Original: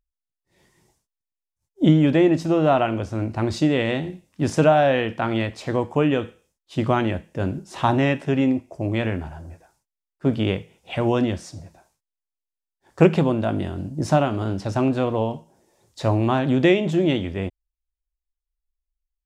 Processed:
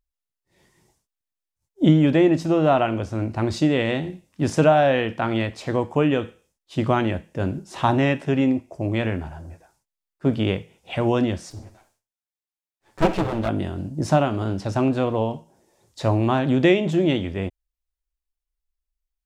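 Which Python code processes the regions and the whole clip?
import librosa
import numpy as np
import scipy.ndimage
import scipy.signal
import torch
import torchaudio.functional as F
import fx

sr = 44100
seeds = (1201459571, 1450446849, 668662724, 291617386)

y = fx.chain(x, sr, fx.lower_of_two(delay_ms=9.3),
    fx.room_flutter(wall_m=11.0, rt60_s=0.28), at=(11.5, 13.49))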